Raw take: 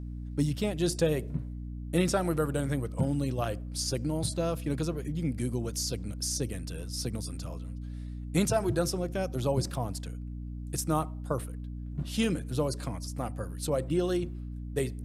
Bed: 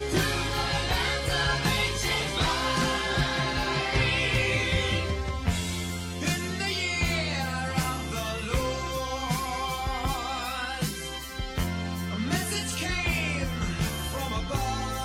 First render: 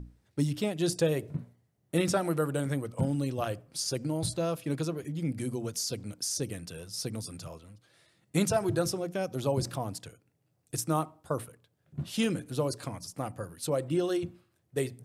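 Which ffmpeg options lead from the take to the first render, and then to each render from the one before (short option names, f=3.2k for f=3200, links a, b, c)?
-af "bandreject=f=60:t=h:w=6,bandreject=f=120:t=h:w=6,bandreject=f=180:t=h:w=6,bandreject=f=240:t=h:w=6,bandreject=f=300:t=h:w=6"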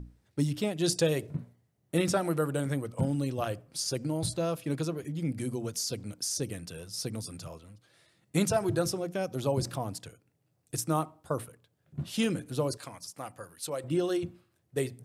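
-filter_complex "[0:a]asettb=1/sr,asplit=3[a][b][c];[a]atrim=end=0.844[d];[b]atrim=start=0.84:end=1.27,asetpts=PTS-STARTPTS,afade=t=in:d=0.004:c=qsin,afade=t=out:st=0.426:d=0.004:c=qsin,equalizer=f=5.1k:w=0.54:g=5.5[e];[c]atrim=start=1.266[f];[d][e]acrossfade=d=0.004:c1=hsin:c2=qsin[g];[g][f]acrossfade=d=0.004:c1=qsin:c2=hsin,asettb=1/sr,asplit=3[h][i][j];[h]atrim=end=12.774[k];[i]atrim=start=12.77:end=13.84,asetpts=PTS-STARTPTS,afade=t=in:d=0.004:c=qsin,afade=t=out:st=1.066:d=0.004:c=qsin,lowshelf=f=500:g=-12[l];[j]atrim=start=13.836[m];[k][l]acrossfade=d=0.004:c1=hsin:c2=qsin[n];[n][m]acrossfade=d=0.004:c1=qsin:c2=hsin"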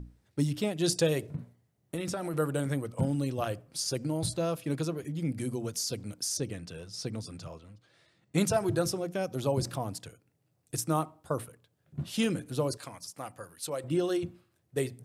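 -filter_complex "[0:a]asettb=1/sr,asplit=3[a][b][c];[a]atrim=end=1.354[d];[b]atrim=start=1.35:end=2.34,asetpts=PTS-STARTPTS,afade=t=in:d=0.004:c=qsin,afade=t=out:st=0.986:d=0.004:c=qsin,acompressor=threshold=-30dB:ratio=6:attack=3.2:release=140:knee=1:detection=peak[e];[c]atrim=start=2.336[f];[d][e]acrossfade=d=0.004:c1=hsin:c2=qsin[g];[g][f]acrossfade=d=0.004:c1=qsin:c2=hsin,asettb=1/sr,asplit=3[h][i][j];[h]atrim=end=6.374[k];[i]atrim=start=6.37:end=8.38,asetpts=PTS-STARTPTS,afade=t=in:d=0.004:c=qsin,afade=t=out:st=2.006:d=0.004:c=qsin,equalizer=f=12k:t=o:w=0.84:g=-14[l];[j]atrim=start=8.376[m];[k][l]acrossfade=d=0.004:c1=hsin:c2=qsin[n];[n][m]acrossfade=d=0.004:c1=qsin:c2=hsin"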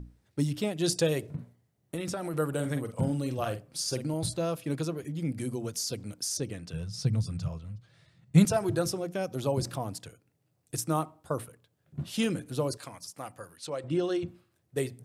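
-filter_complex "[0:a]asettb=1/sr,asplit=3[a][b][c];[a]atrim=end=2.484[d];[b]atrim=start=2.48:end=4.14,asetpts=PTS-STARTPTS,afade=t=in:d=0.004:c=qsin,afade=t=out:st=1.656:d=0.004:c=qsin,asplit=2[e][f];[f]adelay=47,volume=-9dB[g];[e][g]amix=inputs=2:normalize=0,atrim=end_sample=73206[h];[c]atrim=start=4.136[i];[d][h]acrossfade=d=0.004:c1=hsin:c2=qsin[j];[j][i]acrossfade=d=0.004:c1=qsin:c2=hsin,asettb=1/sr,asplit=3[k][l][m];[k]atrim=end=6.734[n];[l]atrim=start=6.73:end=8.45,asetpts=PTS-STARTPTS,afade=t=in:d=0.004:c=qsin,afade=t=out:st=1.716:d=0.004:c=qsin,lowshelf=f=210:t=q:w=1.5:g=10.5[o];[m]atrim=start=8.446[p];[n][o]acrossfade=d=0.004:c1=hsin:c2=qsin[q];[q][p]acrossfade=d=0.004:c1=qsin:c2=hsin,asettb=1/sr,asplit=3[r][s][t];[r]atrim=end=13.574[u];[s]atrim=start=13.57:end=14.28,asetpts=PTS-STARTPTS,afade=t=in:d=0.004:c=qsin,afade=t=out:st=0.706:d=0.004:c=qsin,lowpass=6.3k[v];[t]atrim=start=14.276[w];[u][v]acrossfade=d=0.004:c1=hsin:c2=qsin[x];[x][w]acrossfade=d=0.004:c1=qsin:c2=hsin"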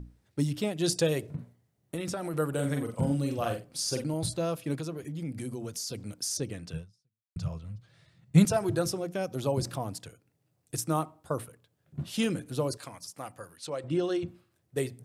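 -filter_complex "[0:a]asettb=1/sr,asplit=3[a][b][c];[a]atrim=end=2.534[d];[b]atrim=start=2.53:end=4.04,asetpts=PTS-STARTPTS,afade=t=in:d=0.004:c=qsin,afade=t=out:st=1.506:d=0.004:c=qsin,asplit=2[e][f];[f]adelay=43,volume=-6dB[g];[e][g]amix=inputs=2:normalize=0,atrim=end_sample=66591[h];[c]atrim=start=4.036[i];[d][h]acrossfade=d=0.004:c1=hsin:c2=qsin[j];[j][i]acrossfade=d=0.004:c1=qsin:c2=hsin,asettb=1/sr,asplit=3[k][l][m];[k]atrim=end=4.764[n];[l]atrim=start=4.76:end=5.95,asetpts=PTS-STARTPTS,afade=t=in:d=0.004:c=qsin,afade=t=out:st=1.186:d=0.004:c=qsin,acompressor=threshold=-34dB:ratio=2:attack=3.2:release=140:knee=1:detection=peak[o];[m]atrim=start=5.946[p];[n][o]acrossfade=d=0.004:c1=hsin:c2=qsin[q];[q][p]acrossfade=d=0.004:c1=qsin:c2=hsin,asplit=2[r][s];[r]atrim=end=7.36,asetpts=PTS-STARTPTS,afade=t=out:st=6.77:d=0.59:c=exp[t];[s]atrim=start=7.36,asetpts=PTS-STARTPTS,afade=t=in:d=0.004:c=hsin[u];[t][u]concat=n=2:v=0:a=1"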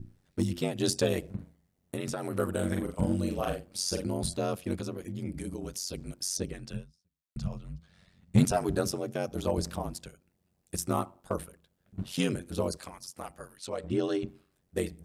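-filter_complex "[0:a]asplit=2[a][b];[b]aeval=exprs='0.106*(abs(mod(val(0)/0.106+3,4)-2)-1)':c=same,volume=-10dB[c];[a][c]amix=inputs=2:normalize=0,aeval=exprs='val(0)*sin(2*PI*46*n/s)':c=same"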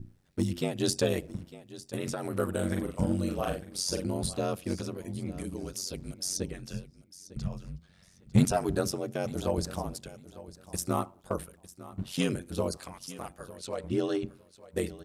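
-af "aecho=1:1:902|1804:0.141|0.0283"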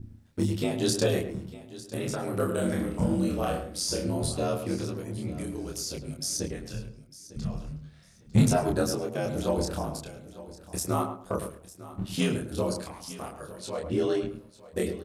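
-filter_complex "[0:a]asplit=2[a][b];[b]adelay=27,volume=-2dB[c];[a][c]amix=inputs=2:normalize=0,asplit=2[d][e];[e]adelay=106,lowpass=f=1.5k:p=1,volume=-7.5dB,asplit=2[f][g];[g]adelay=106,lowpass=f=1.5k:p=1,volume=0.24,asplit=2[h][i];[i]adelay=106,lowpass=f=1.5k:p=1,volume=0.24[j];[d][f][h][j]amix=inputs=4:normalize=0"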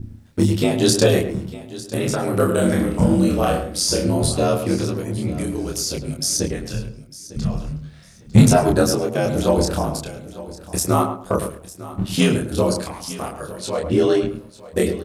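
-af "volume=10dB,alimiter=limit=-1dB:level=0:latency=1"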